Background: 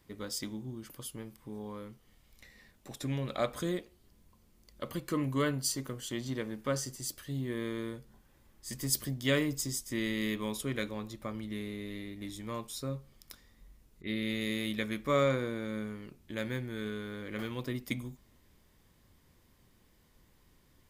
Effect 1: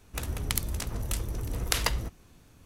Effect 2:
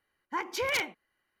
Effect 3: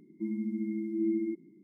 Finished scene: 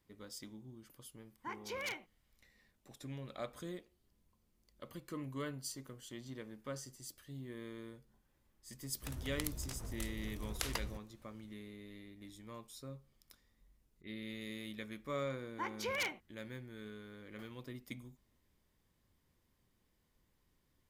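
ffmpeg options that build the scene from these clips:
-filter_complex "[2:a]asplit=2[a][b];[0:a]volume=-11.5dB[c];[a]atrim=end=1.4,asetpts=PTS-STARTPTS,volume=-12dB,afade=t=in:d=0.004:c=hsin,afade=t=out:st=1.396:d=0.004:c=hsin,adelay=1120[d];[1:a]atrim=end=2.65,asetpts=PTS-STARTPTS,volume=-12dB,afade=t=in:d=0.004:c=hsin,afade=t=out:st=2.646:d=0.004:c=hsin,adelay=8890[e];[b]atrim=end=1.4,asetpts=PTS-STARTPTS,volume=-8dB,afade=t=in:d=0.004:c=hsin,afade=t=out:st=1.396:d=0.004:c=hsin,adelay=15260[f];[c][d][e][f]amix=inputs=4:normalize=0"

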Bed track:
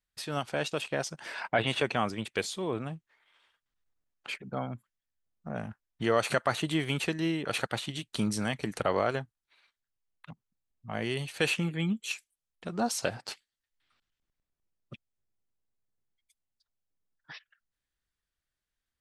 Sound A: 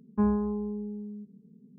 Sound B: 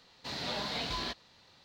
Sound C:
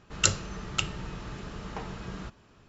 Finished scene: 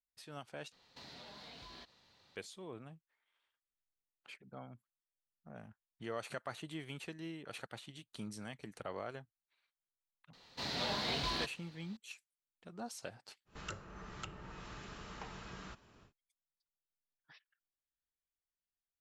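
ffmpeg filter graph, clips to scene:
-filter_complex "[2:a]asplit=2[a][b];[0:a]volume=-15.5dB[c];[a]acompressor=threshold=-43dB:ratio=6:attack=3.2:release=140:knee=1:detection=peak[d];[3:a]acrossover=split=250|850|1900[e][f][g][h];[e]acompressor=threshold=-47dB:ratio=5[i];[f]acompressor=threshold=-56dB:ratio=2[j];[g]acompressor=threshold=-46dB:ratio=2.5[k];[h]acompressor=threshold=-48dB:ratio=8[l];[i][j][k][l]amix=inputs=4:normalize=0[m];[c]asplit=2[n][o];[n]atrim=end=0.724[p];[d]atrim=end=1.64,asetpts=PTS-STARTPTS,volume=-7dB[q];[o]atrim=start=2.356[r];[b]atrim=end=1.64,asetpts=PTS-STARTPTS,volume=-1dB,afade=t=in:d=0.004:c=hsin,afade=t=out:st=1.636:d=0.004:c=hsin,adelay=10330[s];[m]atrim=end=2.68,asetpts=PTS-STARTPTS,volume=-4.5dB,afade=t=in:d=0.1,afade=t=out:st=2.58:d=0.1,adelay=13450[t];[p][q]acrossfade=d=0.004:c1=hsin:c2=hsin[u];[u][r]acrossfade=d=0.004:c1=hsin:c2=hsin[v];[v][s][t]amix=inputs=3:normalize=0"

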